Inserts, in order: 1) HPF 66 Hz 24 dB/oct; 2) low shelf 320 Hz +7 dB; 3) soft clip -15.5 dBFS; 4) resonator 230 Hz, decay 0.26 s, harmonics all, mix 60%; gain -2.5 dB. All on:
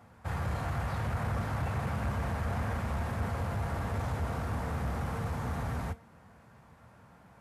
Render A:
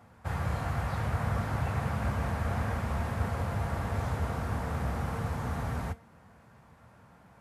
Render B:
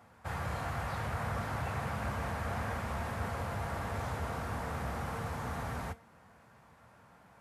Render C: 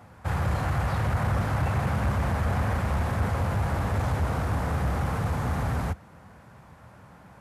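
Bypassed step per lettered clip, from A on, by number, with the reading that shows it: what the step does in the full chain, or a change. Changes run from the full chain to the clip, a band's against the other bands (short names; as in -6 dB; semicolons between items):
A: 3, distortion -18 dB; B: 2, 125 Hz band -5.5 dB; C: 4, loudness change +7.0 LU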